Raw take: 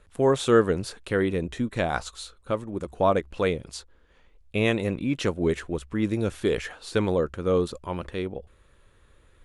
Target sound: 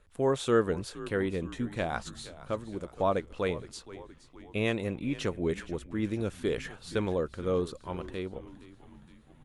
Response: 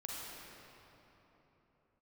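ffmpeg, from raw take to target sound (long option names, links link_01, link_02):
-filter_complex "[0:a]asplit=6[link_01][link_02][link_03][link_04][link_05][link_06];[link_02]adelay=468,afreqshift=-78,volume=-16.5dB[link_07];[link_03]adelay=936,afreqshift=-156,volume=-21.4dB[link_08];[link_04]adelay=1404,afreqshift=-234,volume=-26.3dB[link_09];[link_05]adelay=1872,afreqshift=-312,volume=-31.1dB[link_10];[link_06]adelay=2340,afreqshift=-390,volume=-36dB[link_11];[link_01][link_07][link_08][link_09][link_10][link_11]amix=inputs=6:normalize=0,volume=-6dB"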